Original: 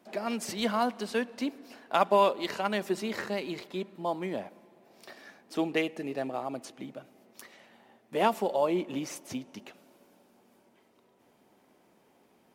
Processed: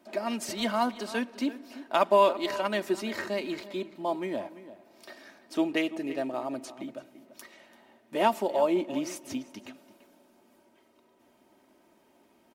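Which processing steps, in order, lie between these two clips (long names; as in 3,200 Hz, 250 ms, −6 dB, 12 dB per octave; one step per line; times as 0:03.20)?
comb filter 3.2 ms, depth 49%
slap from a distant wall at 58 metres, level −15 dB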